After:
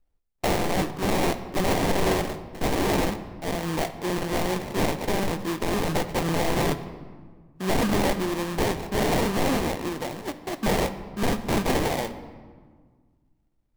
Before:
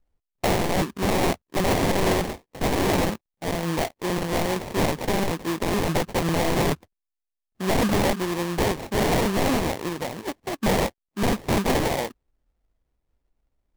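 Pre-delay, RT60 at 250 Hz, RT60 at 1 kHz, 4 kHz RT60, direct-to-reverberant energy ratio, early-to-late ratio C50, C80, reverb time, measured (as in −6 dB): 3 ms, 2.2 s, 1.6 s, 1.0 s, 9.5 dB, 12.0 dB, 13.5 dB, 1.6 s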